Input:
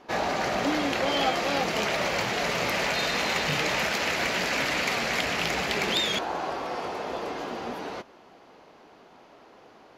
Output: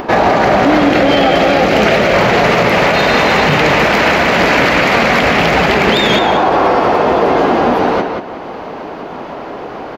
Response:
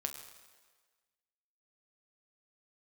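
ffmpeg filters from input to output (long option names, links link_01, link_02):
-filter_complex "[0:a]equalizer=frequency=9000:width_type=o:width=2.5:gain=-14.5,asplit=2[link_01][link_02];[link_02]adelay=182,lowpass=frequency=4800:poles=1,volume=-5dB,asplit=2[link_03][link_04];[link_04]adelay=182,lowpass=frequency=4800:poles=1,volume=0.28,asplit=2[link_05][link_06];[link_06]adelay=182,lowpass=frequency=4800:poles=1,volume=0.28,asplit=2[link_07][link_08];[link_08]adelay=182,lowpass=frequency=4800:poles=1,volume=0.28[link_09];[link_01][link_03][link_05][link_07][link_09]amix=inputs=5:normalize=0,acompressor=mode=upward:threshold=-41dB:ratio=2.5,asettb=1/sr,asplit=3[link_10][link_11][link_12];[link_10]atrim=end=0.904[link_13];[link_11]atrim=start=0.9:end=2.14,asetpts=PTS-STARTPTS,afade=type=in:duration=0.004:curve=qsin,afade=type=out:start_time=1.236:duration=0.004:curve=qsin,equalizer=frequency=1000:width_type=o:width=0.5:gain=-7[link_14];[link_12]atrim=start=2.136[link_15];[link_13][link_14]acrossfade=duration=0.004:curve1=hsin:curve2=qsin[link_16];[link_16][link_15]acrossfade=duration=0.004:curve1=qsin:curve2=hsin,alimiter=level_in=23.5dB:limit=-1dB:release=50:level=0:latency=1,volume=-1dB"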